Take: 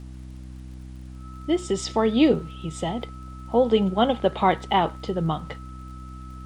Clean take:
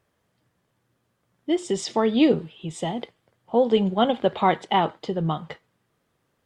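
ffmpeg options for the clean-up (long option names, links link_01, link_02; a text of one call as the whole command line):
ffmpeg -i in.wav -af "adeclick=threshold=4,bandreject=frequency=63.6:width_type=h:width=4,bandreject=frequency=127.2:width_type=h:width=4,bandreject=frequency=190.8:width_type=h:width=4,bandreject=frequency=254.4:width_type=h:width=4,bandreject=frequency=318:width_type=h:width=4,bandreject=frequency=1300:width=30,agate=range=-21dB:threshold=-31dB" out.wav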